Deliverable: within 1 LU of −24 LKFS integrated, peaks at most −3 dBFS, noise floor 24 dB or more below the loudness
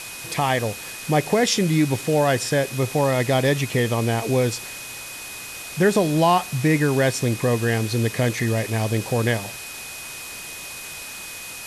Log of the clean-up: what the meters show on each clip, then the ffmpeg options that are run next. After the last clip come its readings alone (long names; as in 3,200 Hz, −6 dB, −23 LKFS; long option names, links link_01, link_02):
interfering tone 2,500 Hz; level of the tone −38 dBFS; background noise floor −36 dBFS; target noise floor −46 dBFS; integrated loudness −21.5 LKFS; sample peak −7.0 dBFS; target loudness −24.0 LKFS
→ -af "bandreject=frequency=2500:width=30"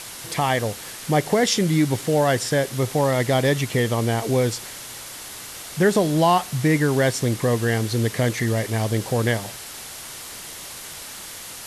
interfering tone none found; background noise floor −37 dBFS; target noise floor −46 dBFS
→ -af "afftdn=noise_reduction=9:noise_floor=-37"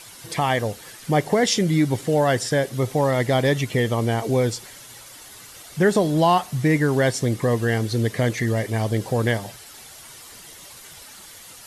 background noise floor −43 dBFS; target noise floor −46 dBFS
→ -af "afftdn=noise_reduction=6:noise_floor=-43"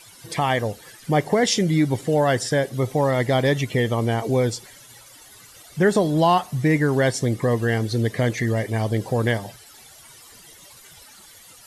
background noise floor −48 dBFS; integrated loudness −21.5 LKFS; sample peak −7.5 dBFS; target loudness −24.0 LKFS
→ -af "volume=-2.5dB"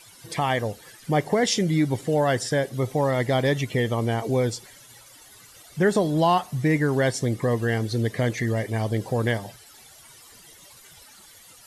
integrated loudness −24.0 LKFS; sample peak −10.0 dBFS; background noise floor −50 dBFS